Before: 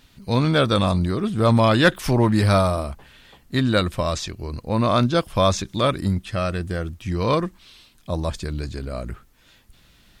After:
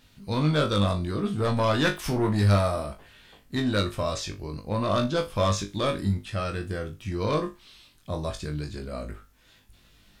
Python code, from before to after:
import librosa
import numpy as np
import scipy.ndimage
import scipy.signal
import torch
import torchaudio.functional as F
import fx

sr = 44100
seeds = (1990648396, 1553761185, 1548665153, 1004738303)

p1 = 10.0 ** (-13.0 / 20.0) * np.tanh(x / 10.0 ** (-13.0 / 20.0))
p2 = p1 + fx.room_flutter(p1, sr, wall_m=3.4, rt60_s=0.23, dry=0)
y = p2 * 10.0 ** (-5.0 / 20.0)